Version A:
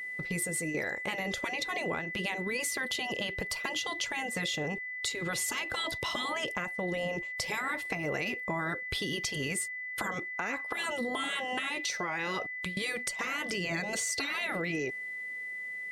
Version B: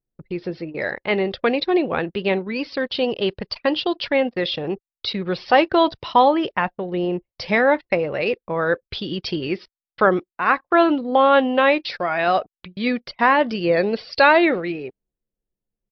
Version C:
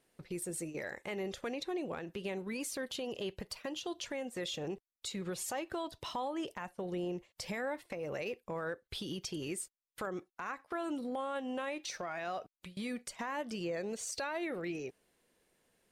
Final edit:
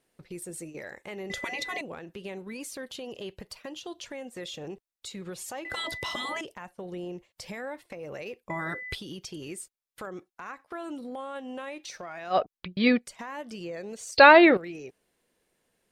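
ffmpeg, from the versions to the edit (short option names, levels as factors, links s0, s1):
-filter_complex "[0:a]asplit=3[s0][s1][s2];[1:a]asplit=2[s3][s4];[2:a]asplit=6[s5][s6][s7][s8][s9][s10];[s5]atrim=end=1.302[s11];[s0]atrim=start=1.298:end=1.812[s12];[s6]atrim=start=1.808:end=5.652[s13];[s1]atrim=start=5.648:end=6.412[s14];[s7]atrim=start=6.408:end=8.502[s15];[s2]atrim=start=8.498:end=8.952[s16];[s8]atrim=start=8.948:end=12.4[s17];[s3]atrim=start=12.3:end=13.07[s18];[s9]atrim=start=12.97:end=14.172[s19];[s4]atrim=start=14.168:end=14.572[s20];[s10]atrim=start=14.568[s21];[s11][s12]acrossfade=d=0.004:c1=hsin:c2=hsin[s22];[s22][s13]acrossfade=d=0.004:c1=hsin:c2=hsin[s23];[s23][s14]acrossfade=d=0.004:c1=hsin:c2=hsin[s24];[s24][s15]acrossfade=d=0.004:c1=hsin:c2=hsin[s25];[s25][s16]acrossfade=d=0.004:c1=hsin:c2=hsin[s26];[s26][s17]acrossfade=d=0.004:c1=hsin:c2=hsin[s27];[s27][s18]acrossfade=d=0.1:c1=tri:c2=tri[s28];[s28][s19]acrossfade=d=0.1:c1=tri:c2=tri[s29];[s29][s20]acrossfade=d=0.004:c1=hsin:c2=hsin[s30];[s30][s21]acrossfade=d=0.004:c1=hsin:c2=hsin"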